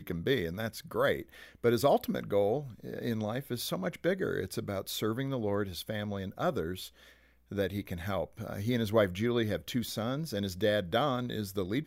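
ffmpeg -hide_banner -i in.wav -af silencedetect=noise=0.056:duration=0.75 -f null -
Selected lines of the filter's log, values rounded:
silence_start: 6.63
silence_end: 7.58 | silence_duration: 0.95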